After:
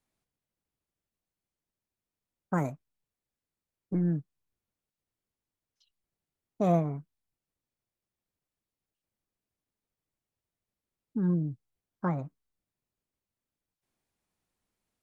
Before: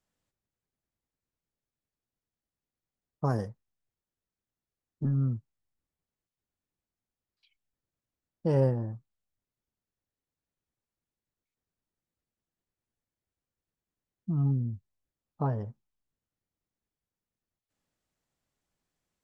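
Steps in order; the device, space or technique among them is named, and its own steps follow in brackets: nightcore (tape speed +28%)

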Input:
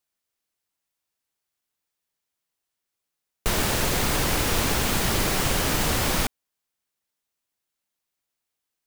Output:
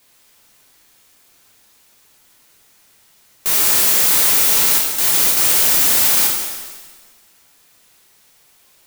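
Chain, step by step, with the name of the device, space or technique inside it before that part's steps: turntable without a phono preamp (RIAA curve recording; white noise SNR 35 dB); 4.78–5.37 s: gate with hold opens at -3 dBFS; pitch-shifted reverb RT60 1.3 s, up +7 st, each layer -8 dB, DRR -1.5 dB; trim -3 dB

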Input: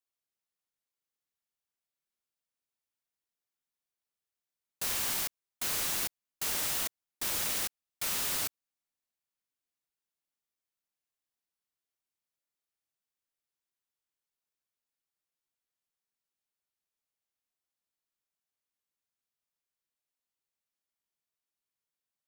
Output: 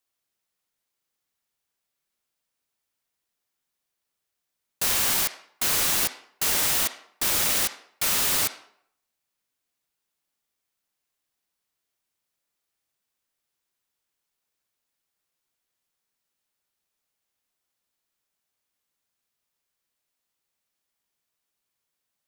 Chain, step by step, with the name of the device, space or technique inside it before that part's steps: filtered reverb send (on a send: high-pass 340 Hz 12 dB/octave + low-pass 5 kHz 12 dB/octave + reverberation RT60 0.65 s, pre-delay 42 ms, DRR 10.5 dB); on the sum: trim +9 dB

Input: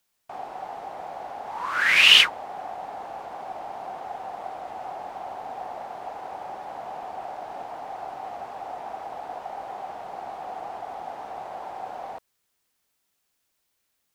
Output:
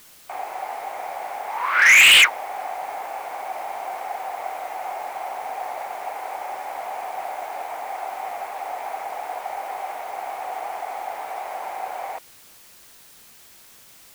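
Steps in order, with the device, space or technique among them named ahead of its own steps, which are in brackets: drive-through speaker (band-pass 490–3600 Hz; peaking EQ 2.2 kHz +10 dB 0.43 oct; hard clipper -14.5 dBFS, distortion -7 dB; white noise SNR 24 dB); trim +5.5 dB

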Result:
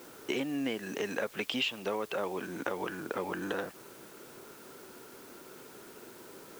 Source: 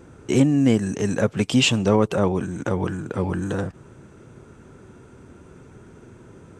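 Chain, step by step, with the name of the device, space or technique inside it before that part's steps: dynamic bell 2.8 kHz, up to +7 dB, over -41 dBFS, Q 0.73; baby monitor (band-pass 380–4300 Hz; compression 6:1, threshold -31 dBFS, peak gain reduction 19 dB; white noise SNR 18 dB)

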